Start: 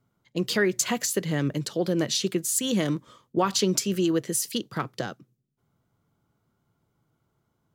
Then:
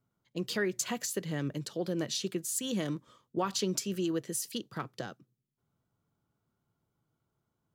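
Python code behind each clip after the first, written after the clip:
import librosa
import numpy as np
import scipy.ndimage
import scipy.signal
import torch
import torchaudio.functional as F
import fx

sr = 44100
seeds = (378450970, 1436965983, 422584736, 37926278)

y = fx.notch(x, sr, hz=2100.0, q=24.0)
y = y * 10.0 ** (-8.0 / 20.0)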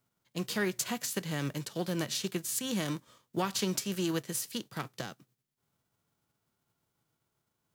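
y = fx.envelope_flatten(x, sr, power=0.6)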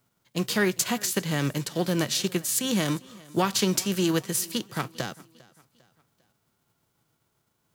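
y = fx.echo_feedback(x, sr, ms=400, feedback_pct=44, wet_db=-23)
y = y * 10.0 ** (7.5 / 20.0)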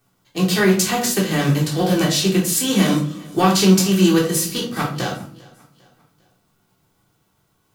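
y = fx.room_shoebox(x, sr, seeds[0], volume_m3=420.0, walls='furnished', distance_m=3.6)
y = y * 10.0 ** (2.0 / 20.0)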